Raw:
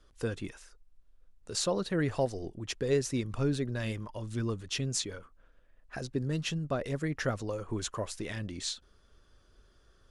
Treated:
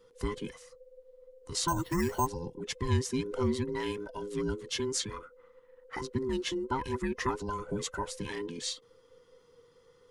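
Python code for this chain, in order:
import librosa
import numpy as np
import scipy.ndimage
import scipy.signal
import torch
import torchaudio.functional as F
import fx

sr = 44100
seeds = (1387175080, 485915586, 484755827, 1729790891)

y = fx.band_invert(x, sr, width_hz=500)
y = fx.resample_bad(y, sr, factor=6, down='filtered', up='hold', at=(1.68, 2.27))
y = fx.peak_eq(y, sr, hz=1400.0, db=7.5, octaves=0.65, at=(4.8, 6.25))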